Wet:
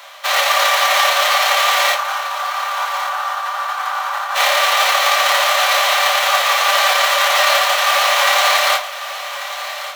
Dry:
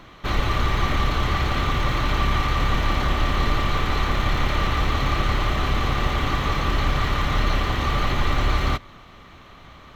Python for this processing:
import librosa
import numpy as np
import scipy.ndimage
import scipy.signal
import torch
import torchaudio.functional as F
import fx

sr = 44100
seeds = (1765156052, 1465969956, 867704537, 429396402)

y = fx.envelope_flatten(x, sr, power=0.6)
y = scipy.signal.sosfilt(scipy.signal.butter(12, 540.0, 'highpass', fs=sr, output='sos'), y)
y = fx.band_shelf(y, sr, hz=1100.0, db=14.0, octaves=1.3, at=(1.95, 4.35))
y = fx.over_compress(y, sr, threshold_db=-22.0, ratio=-1.0)
y = fx.echo_feedback(y, sr, ms=1142, feedback_pct=43, wet_db=-13)
y = fx.room_shoebox(y, sr, seeds[0], volume_m3=160.0, walls='furnished', distance_m=1.2)
y = F.gain(torch.from_numpy(y), 3.0).numpy()